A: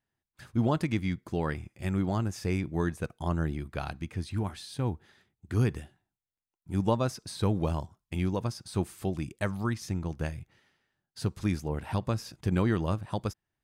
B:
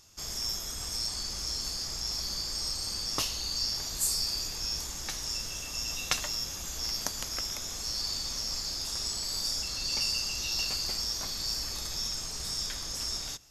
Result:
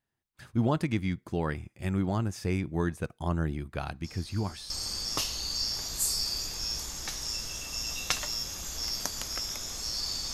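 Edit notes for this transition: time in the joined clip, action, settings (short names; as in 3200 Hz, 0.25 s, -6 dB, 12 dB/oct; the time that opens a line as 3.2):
A
4.04 add B from 2.05 s 0.66 s -15 dB
4.7 switch to B from 2.71 s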